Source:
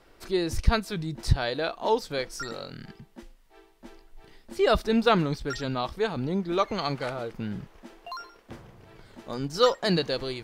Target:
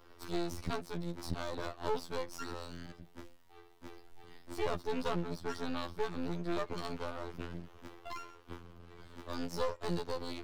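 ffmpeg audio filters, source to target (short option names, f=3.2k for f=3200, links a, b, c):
-filter_complex "[0:a]afftfilt=real='hypot(re,im)*cos(PI*b)':imag='0':win_size=2048:overlap=0.75,acrossover=split=170|530|1100[a][b][c][d];[a]acompressor=threshold=-50dB:ratio=4[e];[b]acompressor=threshold=-33dB:ratio=4[f];[c]acompressor=threshold=-48dB:ratio=4[g];[d]acompressor=threshold=-44dB:ratio=4[h];[e][f][g][h]amix=inputs=4:normalize=0,aeval=exprs='max(val(0),0)':c=same,volume=3dB"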